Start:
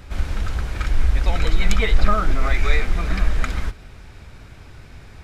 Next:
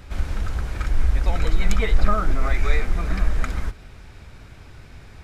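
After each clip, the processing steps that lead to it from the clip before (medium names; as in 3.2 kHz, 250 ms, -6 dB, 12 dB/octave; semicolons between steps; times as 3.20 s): dynamic bell 3.3 kHz, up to -5 dB, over -42 dBFS, Q 0.84; trim -1.5 dB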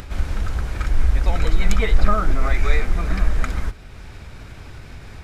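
upward compressor, threshold -32 dBFS; trim +2 dB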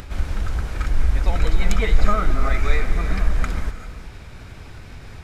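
gated-style reverb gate 420 ms rising, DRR 10 dB; trim -1 dB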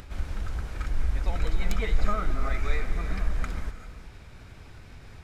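tracing distortion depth 0.03 ms; trim -8 dB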